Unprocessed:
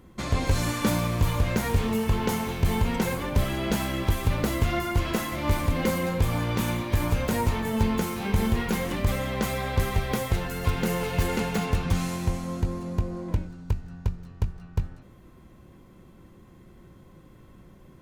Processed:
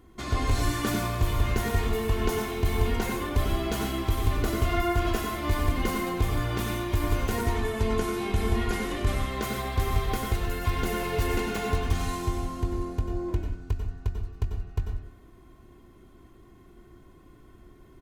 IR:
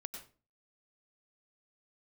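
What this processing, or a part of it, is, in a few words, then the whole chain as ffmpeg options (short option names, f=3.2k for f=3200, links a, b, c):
microphone above a desk: -filter_complex "[0:a]asettb=1/sr,asplit=3[a][b][c];[a]atrim=end=7.434[d];[b]atrim=start=7.43:end=9.31,asetpts=PTS-STARTPTS,afade=t=in:d=0.004:c=qsin,afade=t=out:st=1.876:d=0.004:c=qsin,lowpass=f=12k:w=0.5412,lowpass=f=12k:w=1.3066[e];[c]atrim=start=9.306[f];[d][e]acrossfade=d=0.004:c1=hsin:c2=qsin[g];[g][f]acrossfade=d=0.004:c1=qsin:c2=hsin,aecho=1:1:2.8:0.58[h];[1:a]atrim=start_sample=2205[i];[h][i]afir=irnorm=-1:irlink=0"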